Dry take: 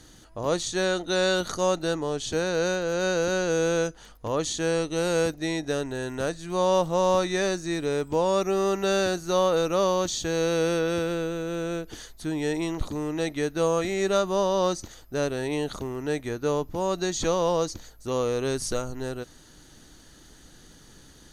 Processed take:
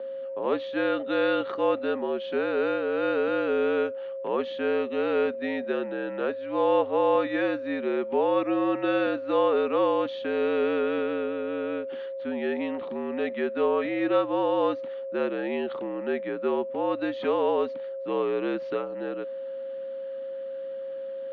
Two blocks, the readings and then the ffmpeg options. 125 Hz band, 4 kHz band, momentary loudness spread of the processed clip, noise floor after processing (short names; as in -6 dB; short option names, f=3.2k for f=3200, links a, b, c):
-15.5 dB, -8.5 dB, 11 LU, -35 dBFS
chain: -af "aeval=exprs='val(0)+0.0251*sin(2*PI*600*n/s)':c=same,highpass=f=310:t=q:w=0.5412,highpass=f=310:t=q:w=1.307,lowpass=f=3.1k:t=q:w=0.5176,lowpass=f=3.1k:t=q:w=0.7071,lowpass=f=3.1k:t=q:w=1.932,afreqshift=-60"